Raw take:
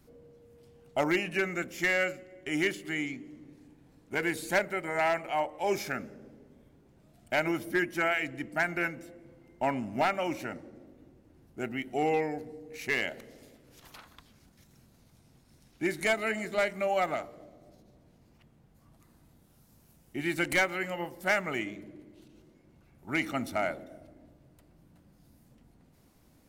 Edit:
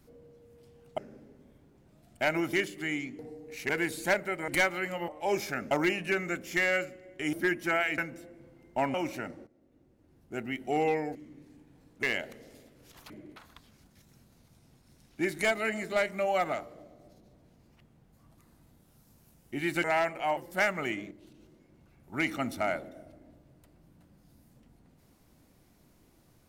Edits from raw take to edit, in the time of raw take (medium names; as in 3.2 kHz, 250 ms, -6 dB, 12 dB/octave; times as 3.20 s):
0.98–2.60 s: swap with 6.09–7.64 s
3.26–4.14 s: swap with 12.41–12.91 s
4.93–5.46 s: swap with 20.46–21.06 s
8.29–8.83 s: delete
9.79–10.20 s: delete
10.73–11.82 s: fade in, from -17.5 dB
21.80–22.06 s: move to 13.98 s